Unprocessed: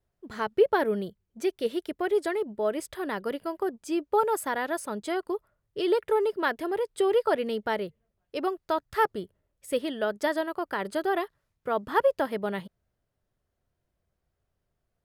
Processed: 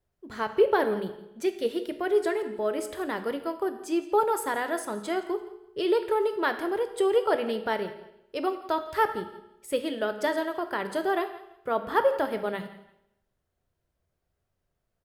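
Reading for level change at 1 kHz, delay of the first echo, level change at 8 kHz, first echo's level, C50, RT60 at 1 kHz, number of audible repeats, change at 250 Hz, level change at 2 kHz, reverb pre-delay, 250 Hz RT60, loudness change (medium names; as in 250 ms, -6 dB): +0.5 dB, 169 ms, +0.5 dB, -18.0 dB, 10.5 dB, 0.80 s, 2, +0.5 dB, +0.5 dB, 14 ms, 0.90 s, +0.5 dB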